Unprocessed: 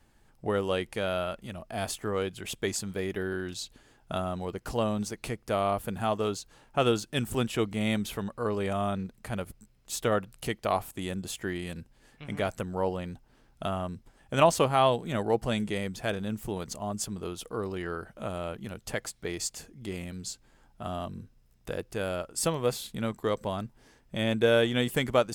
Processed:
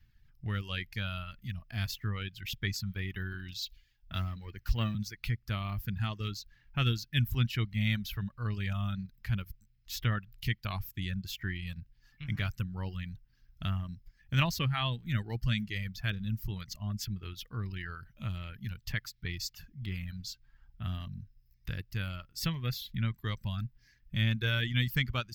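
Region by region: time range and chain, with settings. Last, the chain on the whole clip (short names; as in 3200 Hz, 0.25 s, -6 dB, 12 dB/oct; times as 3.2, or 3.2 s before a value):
3.62–4.95 G.711 law mismatch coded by mu + bell 150 Hz -11 dB 0.57 oct + three-band expander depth 70%
whole clip: reverb removal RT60 1.1 s; EQ curve 120 Hz 0 dB, 480 Hz -28 dB, 750 Hz -27 dB, 1800 Hz -7 dB, 5300 Hz -8 dB, 9400 Hz -30 dB, 13000 Hz -5 dB; AGC gain up to 5 dB; gain +3 dB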